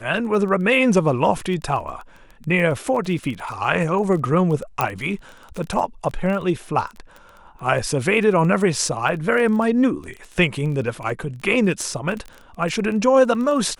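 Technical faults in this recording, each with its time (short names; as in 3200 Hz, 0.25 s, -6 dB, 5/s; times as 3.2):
crackle 18/s -27 dBFS
4.81 pop -5 dBFS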